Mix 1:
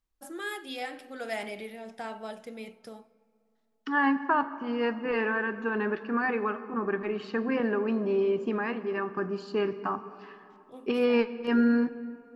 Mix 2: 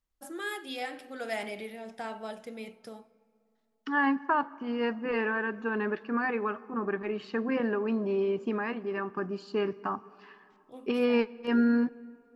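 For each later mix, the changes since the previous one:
second voice: send −8.5 dB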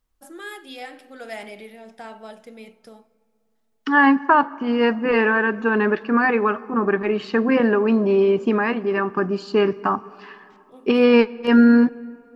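second voice +11.5 dB

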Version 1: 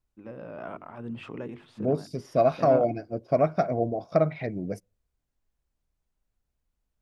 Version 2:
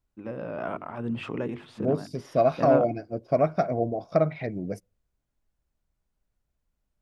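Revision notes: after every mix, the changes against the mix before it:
first voice +6.0 dB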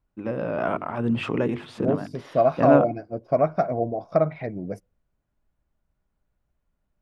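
first voice +7.0 dB
second voice: add drawn EQ curve 390 Hz 0 dB, 1,000 Hz +4 dB, 3,400 Hz −5 dB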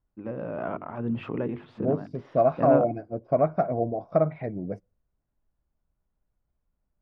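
first voice −4.5 dB
master: add head-to-tape spacing loss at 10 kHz 28 dB

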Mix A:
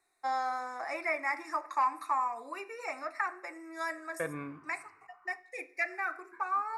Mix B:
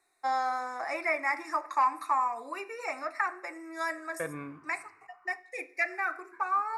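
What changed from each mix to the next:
first voice +3.0 dB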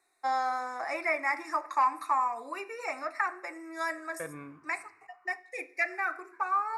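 second voice −4.0 dB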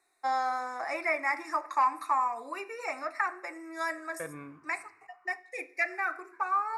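nothing changed

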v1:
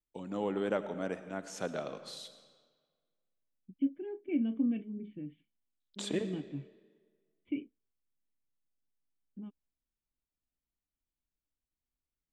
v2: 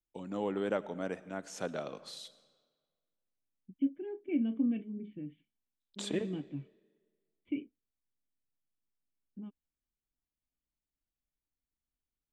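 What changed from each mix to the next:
first voice: send −6.5 dB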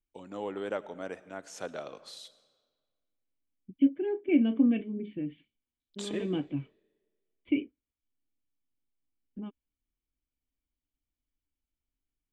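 second voice +11.5 dB
master: add parametric band 180 Hz −7.5 dB 1.3 octaves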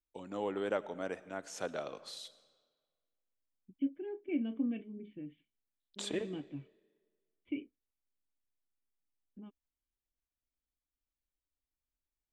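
second voice −10.5 dB

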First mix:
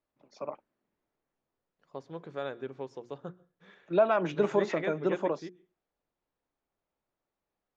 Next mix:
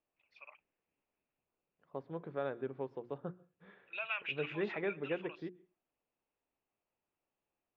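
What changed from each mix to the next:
first voice: add high-pass with resonance 2,600 Hz, resonance Q 6.8
master: add high-frequency loss of the air 440 metres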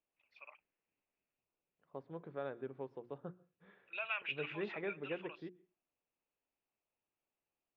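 first voice: add high-frequency loss of the air 72 metres
second voice −4.5 dB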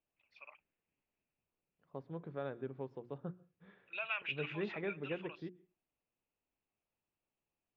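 master: add bass and treble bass +7 dB, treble +5 dB

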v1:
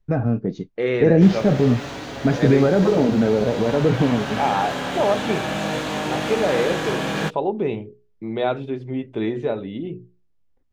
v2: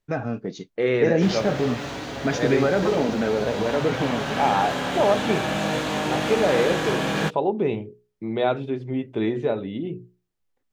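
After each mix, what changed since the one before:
first voice: add spectral tilt +3.5 dB per octave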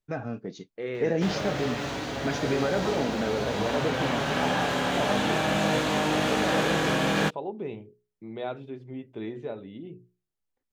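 first voice −6.0 dB
second voice −11.5 dB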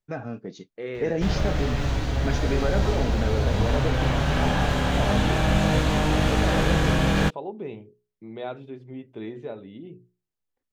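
background: remove high-pass filter 230 Hz 12 dB per octave

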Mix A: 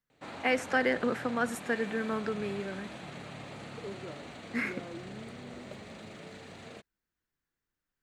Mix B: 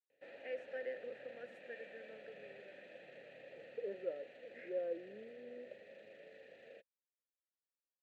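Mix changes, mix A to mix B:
first voice −10.5 dB
second voice +10.5 dB
master: add formant filter e

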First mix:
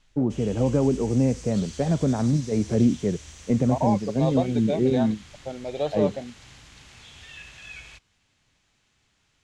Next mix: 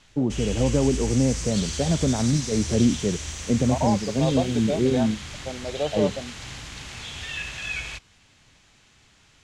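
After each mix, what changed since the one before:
background +11.0 dB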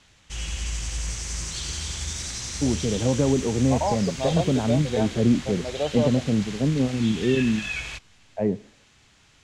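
first voice: entry +2.45 s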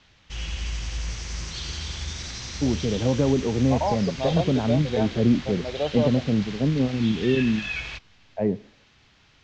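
master: add low-pass filter 5,400 Hz 24 dB per octave

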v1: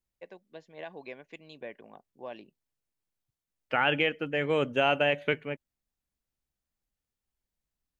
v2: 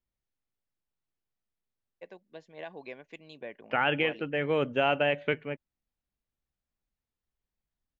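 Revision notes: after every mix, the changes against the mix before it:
first voice: entry +1.80 s
second voice: add high-frequency loss of the air 140 metres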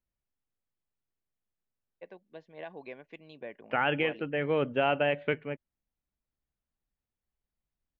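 master: add high-frequency loss of the air 180 metres

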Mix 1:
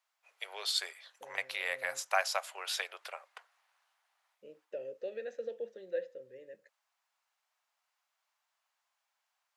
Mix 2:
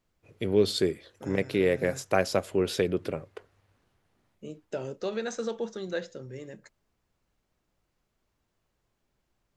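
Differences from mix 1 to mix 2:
first voice: remove Butterworth high-pass 740 Hz 36 dB per octave
second voice: remove formant filter e

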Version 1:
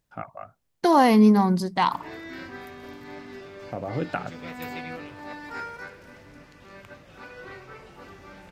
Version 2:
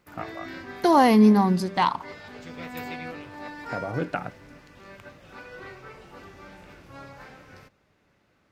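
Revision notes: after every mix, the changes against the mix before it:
background: entry −1.85 s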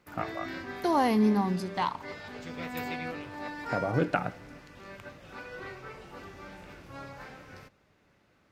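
second voice −9.0 dB
reverb: on

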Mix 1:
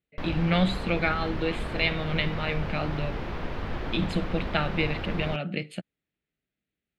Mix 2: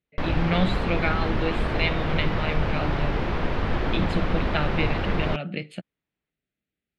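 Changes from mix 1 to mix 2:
background +7.5 dB
master: add high-shelf EQ 9,600 Hz −9 dB

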